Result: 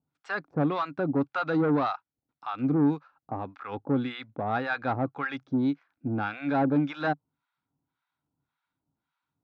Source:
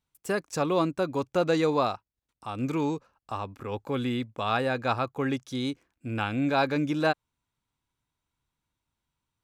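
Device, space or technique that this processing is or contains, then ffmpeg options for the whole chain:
guitar amplifier with harmonic tremolo: -filter_complex "[0:a]acrossover=split=800[link_01][link_02];[link_01]aeval=exprs='val(0)*(1-1/2+1/2*cos(2*PI*1.8*n/s))':channel_layout=same[link_03];[link_02]aeval=exprs='val(0)*(1-1/2-1/2*cos(2*PI*1.8*n/s))':channel_layout=same[link_04];[link_03][link_04]amix=inputs=2:normalize=0,asoftclip=type=tanh:threshold=-27dB,highpass=100,equalizer=frequency=150:width_type=q:width=4:gain=8,equalizer=frequency=280:width_type=q:width=4:gain=9,equalizer=frequency=770:width_type=q:width=4:gain=6,equalizer=frequency=1400:width_type=q:width=4:gain=8,equalizer=frequency=2900:width_type=q:width=4:gain=-5,lowpass=frequency=4000:width=0.5412,lowpass=frequency=4000:width=1.3066,volume=3dB"

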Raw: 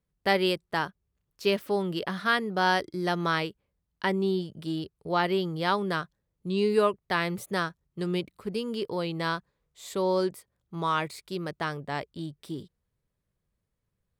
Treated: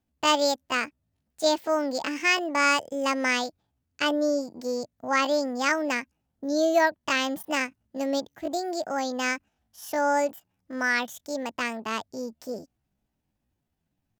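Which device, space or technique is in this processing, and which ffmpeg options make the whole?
chipmunk voice: -af "asetrate=68011,aresample=44100,atempo=0.64842,volume=2dB"

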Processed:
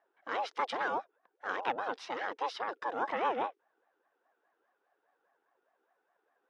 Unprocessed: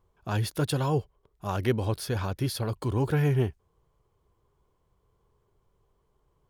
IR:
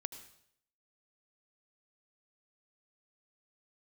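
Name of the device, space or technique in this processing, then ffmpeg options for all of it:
voice changer toy: -af "aeval=exprs='val(0)*sin(2*PI*540*n/s+540*0.35/4.9*sin(2*PI*4.9*n/s))':channel_layout=same,highpass=590,equalizer=frequency=610:width_type=q:width=4:gain=-7,equalizer=frequency=1600:width_type=q:width=4:gain=5,equalizer=frequency=4300:width_type=q:width=4:gain=-8,lowpass=frequency=4900:width=0.5412,lowpass=frequency=4900:width=1.3066"

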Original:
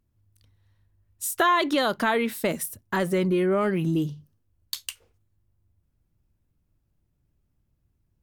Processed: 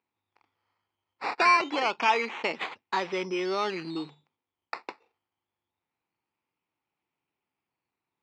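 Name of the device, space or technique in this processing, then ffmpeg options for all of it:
circuit-bent sampling toy: -filter_complex "[0:a]asettb=1/sr,asplit=3[link_01][link_02][link_03];[link_01]atrim=end=4.104[link_04];[link_02]atrim=start=4.1:end=4.76,asetpts=PTS-STARTPTS,afade=type=in:duration=0.004:curve=qsin,afade=type=out:start_time=0.656:duration=0.004:curve=qsin,highshelf=frequency=6200:gain=-5.5[link_05];[link_03]atrim=start=4.756[link_06];[link_04][link_05]acrossfade=duration=0.004:curve1=hsin:curve2=qsin[link_07];[link_07][link_06]acrossfade=duration=0.004:curve1=qsin:curve2=hsin,acrusher=samples=11:mix=1:aa=0.000001:lfo=1:lforange=6.6:lforate=0.25,highpass=490,equalizer=frequency=600:width_type=q:width=4:gain=-8,equalizer=frequency=870:width_type=q:width=4:gain=6,equalizer=frequency=1600:width_type=q:width=4:gain=-6,equalizer=frequency=2400:width_type=q:width=4:gain=5,equalizer=frequency=3700:width_type=q:width=4:gain=-4,lowpass=frequency=4600:width=0.5412,lowpass=frequency=4600:width=1.3066"

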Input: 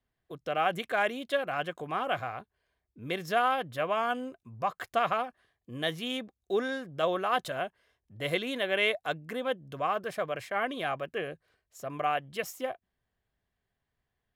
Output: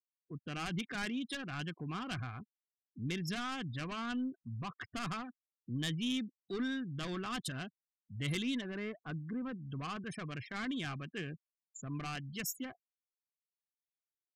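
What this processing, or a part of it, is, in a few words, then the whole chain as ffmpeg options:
saturation between pre-emphasis and de-emphasis: -filter_complex "[0:a]lowshelf=frequency=210:gain=3.5,asplit=3[link_01][link_02][link_03];[link_01]afade=type=out:start_time=8.6:duration=0.02[link_04];[link_02]lowpass=frequency=1500:width=0.5412,lowpass=frequency=1500:width=1.3066,afade=type=in:start_time=8.6:duration=0.02,afade=type=out:start_time=9.66:duration=0.02[link_05];[link_03]afade=type=in:start_time=9.66:duration=0.02[link_06];[link_04][link_05][link_06]amix=inputs=3:normalize=0,afftfilt=real='re*gte(hypot(re,im),0.00891)':imag='im*gte(hypot(re,im),0.00891)':win_size=1024:overlap=0.75,highshelf=frequency=8200:gain=11.5,asoftclip=type=tanh:threshold=-26dB,firequalizer=gain_entry='entry(250,0);entry(560,-23);entry(970,-12);entry(1700,-7);entry(7900,7)':delay=0.05:min_phase=1,highshelf=frequency=8200:gain=-11.5,volume=2.5dB"

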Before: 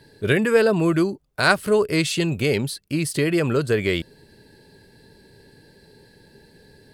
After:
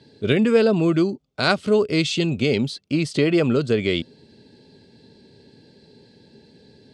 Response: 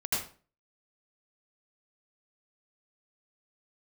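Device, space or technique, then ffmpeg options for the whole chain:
car door speaker: -filter_complex "[0:a]highpass=84,equalizer=frequency=240:width_type=q:width=4:gain=7,equalizer=frequency=990:width_type=q:width=4:gain=-5,equalizer=frequency=1700:width_type=q:width=4:gain=-9,equalizer=frequency=3400:width_type=q:width=4:gain=4,lowpass=frequency=6900:width=0.5412,lowpass=frequency=6900:width=1.3066,asettb=1/sr,asplit=3[link_01][link_02][link_03];[link_01]atrim=end=2.744[link_04];[link_02]atrim=start=2.74:end=3.43,asetpts=PTS-STARTPTS,afade=type=in:duration=0.004:curve=qsin,afade=type=out:start_time=0.686:duration=0.004:curve=qsin,equalizer=frequency=880:width_type=o:width=2.1:gain=5[link_05];[link_03]atrim=start=3.426[link_06];[link_04][link_05]acrossfade=duration=0.004:curve1=hsin:curve2=qsin[link_07];[link_07][link_06]acrossfade=duration=0.004:curve1=qsin:curve2=hsin"

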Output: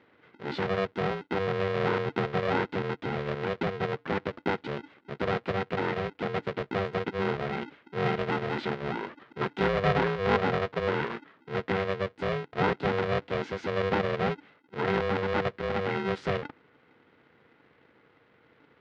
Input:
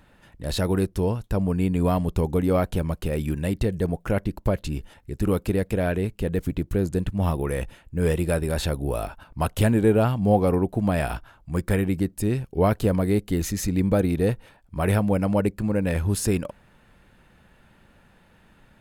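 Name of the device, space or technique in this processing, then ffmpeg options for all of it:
ring modulator pedal into a guitar cabinet: -af "aeval=exprs='val(0)*sgn(sin(2*PI*290*n/s))':channel_layout=same,highpass=97,equalizer=frequency=140:width_type=q:width=4:gain=5,equalizer=frequency=460:width_type=q:width=4:gain=6,equalizer=frequency=1400:width_type=q:width=4:gain=5,equalizer=frequency=2000:width_type=q:width=4:gain=5,lowpass=frequency=3900:width=0.5412,lowpass=frequency=3900:width=1.3066,volume=-8dB"

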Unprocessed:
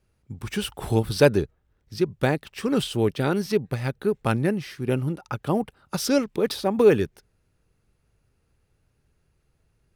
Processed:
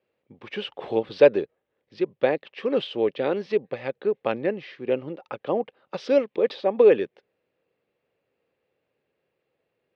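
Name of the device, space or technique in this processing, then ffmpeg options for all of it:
phone earpiece: -af "highpass=350,equalizer=frequency=520:width_type=q:width=4:gain=8,equalizer=frequency=920:width_type=q:width=4:gain=-3,equalizer=frequency=1400:width_type=q:width=4:gain=-8,lowpass=frequency=3400:width=0.5412,lowpass=frequency=3400:width=1.3066"

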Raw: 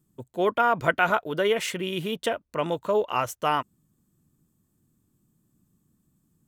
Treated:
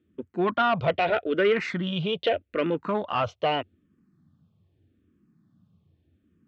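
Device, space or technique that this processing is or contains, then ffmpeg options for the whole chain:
barber-pole phaser into a guitar amplifier: -filter_complex "[0:a]asplit=2[link_01][link_02];[link_02]afreqshift=-0.81[link_03];[link_01][link_03]amix=inputs=2:normalize=1,asoftclip=type=tanh:threshold=-23dB,highpass=78,equalizer=frequency=88:width_type=q:width=4:gain=9,equalizer=frequency=130:width_type=q:width=4:gain=-4,equalizer=frequency=940:width_type=q:width=4:gain=-8,lowpass=frequency=3600:width=0.5412,lowpass=frequency=3600:width=1.3066,volume=7.5dB"

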